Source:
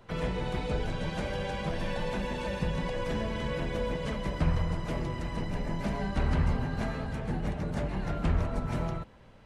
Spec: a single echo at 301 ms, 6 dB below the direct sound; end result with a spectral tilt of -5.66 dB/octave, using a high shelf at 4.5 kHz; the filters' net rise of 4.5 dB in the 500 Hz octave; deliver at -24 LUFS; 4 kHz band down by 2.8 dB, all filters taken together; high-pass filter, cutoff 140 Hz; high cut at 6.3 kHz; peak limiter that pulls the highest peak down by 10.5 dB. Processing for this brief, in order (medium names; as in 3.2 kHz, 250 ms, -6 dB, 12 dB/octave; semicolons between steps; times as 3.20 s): high-pass 140 Hz; low-pass 6.3 kHz; peaking EQ 500 Hz +5 dB; peaking EQ 4 kHz -8 dB; treble shelf 4.5 kHz +9 dB; peak limiter -28.5 dBFS; delay 301 ms -6 dB; trim +12.5 dB